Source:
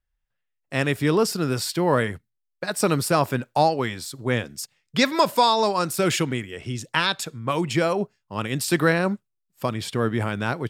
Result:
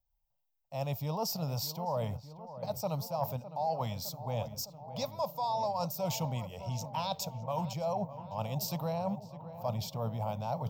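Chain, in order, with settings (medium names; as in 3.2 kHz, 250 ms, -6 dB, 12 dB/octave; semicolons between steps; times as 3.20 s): FFT filter 170 Hz 0 dB, 360 Hz -22 dB, 590 Hz +5 dB, 890 Hz +7 dB, 1.7 kHz -28 dB, 2.4 kHz -11 dB, 3.5 kHz -8 dB, 5.9 kHz +1 dB, 10 kHz -18 dB, 15 kHz +14 dB; reverse; compression 6:1, threshold -29 dBFS, peak gain reduction 19 dB; reverse; filtered feedback delay 609 ms, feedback 77%, low-pass 1.8 kHz, level -12.5 dB; trim -2.5 dB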